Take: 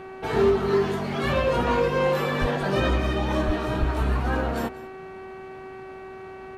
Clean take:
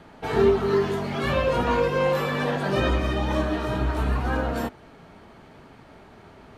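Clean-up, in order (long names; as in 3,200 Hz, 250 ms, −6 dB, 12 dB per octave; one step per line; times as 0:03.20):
clipped peaks rebuilt −14.5 dBFS
hum removal 380.2 Hz, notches 7
high-pass at the plosives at 0:02.40/0:03.46/0:03.79
echo removal 189 ms −18.5 dB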